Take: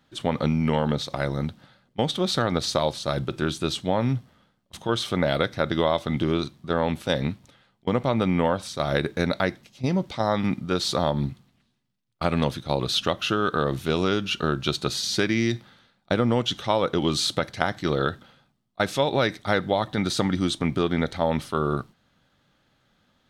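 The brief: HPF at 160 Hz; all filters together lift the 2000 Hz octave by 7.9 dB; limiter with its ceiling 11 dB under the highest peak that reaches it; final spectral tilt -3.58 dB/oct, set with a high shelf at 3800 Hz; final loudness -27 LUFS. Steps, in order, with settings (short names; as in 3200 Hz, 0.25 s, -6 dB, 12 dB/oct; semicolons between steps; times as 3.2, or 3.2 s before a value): HPF 160 Hz; bell 2000 Hz +9 dB; high shelf 3800 Hz +5.5 dB; gain -3 dB; limiter -11.5 dBFS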